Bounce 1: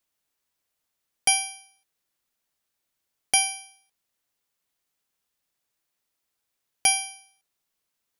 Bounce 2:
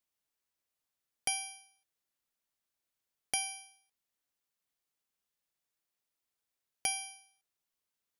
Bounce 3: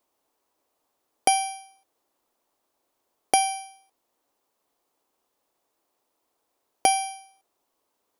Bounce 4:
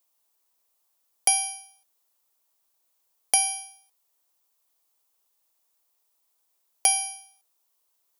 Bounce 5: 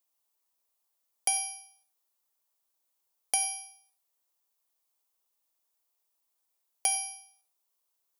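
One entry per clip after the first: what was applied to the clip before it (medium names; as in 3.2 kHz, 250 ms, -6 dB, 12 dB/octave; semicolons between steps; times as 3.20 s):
compression 2:1, threshold -25 dBFS, peak gain reduction 5.5 dB; trim -8 dB
high-order bell 540 Hz +13 dB 2.5 oct; trim +8.5 dB
tilt EQ +4 dB/octave; trim -7.5 dB
gated-style reverb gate 130 ms flat, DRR 10 dB; trim -7 dB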